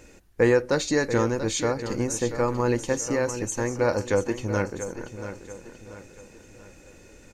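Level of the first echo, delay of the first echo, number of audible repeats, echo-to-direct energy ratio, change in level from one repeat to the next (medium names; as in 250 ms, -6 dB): -11.0 dB, 685 ms, 4, -10.0 dB, -8.0 dB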